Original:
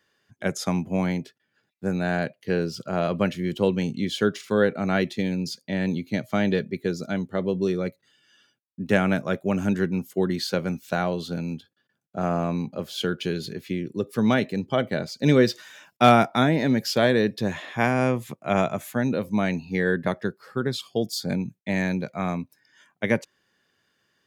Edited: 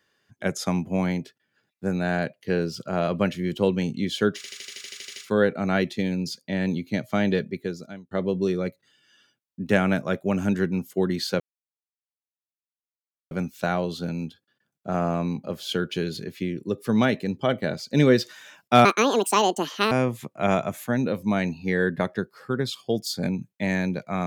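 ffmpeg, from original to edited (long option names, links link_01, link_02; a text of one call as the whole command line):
ffmpeg -i in.wav -filter_complex "[0:a]asplit=15[link_01][link_02][link_03][link_04][link_05][link_06][link_07][link_08][link_09][link_10][link_11][link_12][link_13][link_14][link_15];[link_01]atrim=end=4.442[link_16];[link_02]atrim=start=4.358:end=4.442[link_17];[link_03]atrim=start=4.358:end=4.442[link_18];[link_04]atrim=start=4.358:end=4.442[link_19];[link_05]atrim=start=4.358:end=4.442[link_20];[link_06]atrim=start=4.358:end=4.442[link_21];[link_07]atrim=start=4.358:end=4.442[link_22];[link_08]atrim=start=4.358:end=4.442[link_23];[link_09]atrim=start=4.358:end=4.442[link_24];[link_10]atrim=start=4.358:end=4.442[link_25];[link_11]atrim=start=4.358:end=7.31,asetpts=PTS-STARTPTS,afade=type=out:start_time=2.282:duration=0.67[link_26];[link_12]atrim=start=7.31:end=10.6,asetpts=PTS-STARTPTS,afade=type=in:duration=0.004:curve=hsin,afade=type=out:start_time=3.286:duration=0.004:curve=hsin,apad=pad_dur=1.91[link_27];[link_13]atrim=start=10.6:end=16.144,asetpts=PTS-STARTPTS,afade=type=in:duration=0.004:curve=hsin[link_28];[link_14]atrim=start=16.14:end=17.98,asetpts=PTS-STARTPTS,asetrate=76293,aresample=44100,atrim=end_sample=46904,asetpts=PTS-STARTPTS[link_29];[link_15]atrim=start=17.976[link_30];[link_16][link_17]acrossfade=duration=0.004:curve1=hsin:curve2=hsin[link_31];[link_31][link_18]acrossfade=duration=0.004:curve1=hsin:curve2=hsin[link_32];[link_32][link_19]acrossfade=duration=0.004:curve1=hsin:curve2=hsin[link_33];[link_33][link_20]acrossfade=duration=0.004:curve1=hsin:curve2=hsin[link_34];[link_34][link_21]acrossfade=duration=0.004:curve1=hsin:curve2=hsin[link_35];[link_35][link_22]acrossfade=duration=0.004:curve1=hsin:curve2=hsin[link_36];[link_36][link_23]acrossfade=duration=0.004:curve1=hsin:curve2=hsin[link_37];[link_37][link_24]acrossfade=duration=0.004:curve1=hsin:curve2=hsin[link_38];[link_38][link_25]acrossfade=duration=0.004:curve1=hsin:curve2=hsin[link_39];[link_26][link_27][link_28]concat=n=3:v=0:a=1[link_40];[link_39][link_40]acrossfade=duration=0.004:curve1=hsin:curve2=hsin[link_41];[link_41][link_29]acrossfade=duration=0.004:curve1=hsin:curve2=hsin[link_42];[link_42][link_30]acrossfade=duration=0.004:curve1=hsin:curve2=hsin" out.wav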